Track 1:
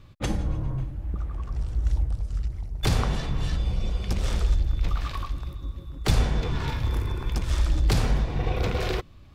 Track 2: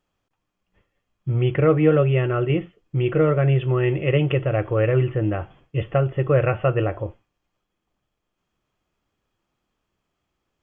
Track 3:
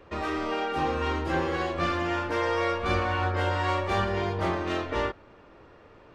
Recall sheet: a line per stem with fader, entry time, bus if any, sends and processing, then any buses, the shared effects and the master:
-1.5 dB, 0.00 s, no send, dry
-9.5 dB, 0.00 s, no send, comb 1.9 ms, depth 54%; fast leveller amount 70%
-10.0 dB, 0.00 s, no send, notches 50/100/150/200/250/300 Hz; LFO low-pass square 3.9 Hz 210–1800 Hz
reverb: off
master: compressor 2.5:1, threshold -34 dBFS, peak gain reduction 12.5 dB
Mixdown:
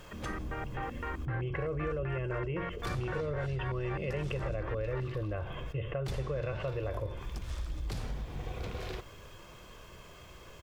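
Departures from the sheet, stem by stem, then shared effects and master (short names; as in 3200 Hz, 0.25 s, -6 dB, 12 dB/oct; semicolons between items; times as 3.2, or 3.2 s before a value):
stem 1 -1.5 dB -> -11.5 dB; stem 2 -9.5 dB -> -15.5 dB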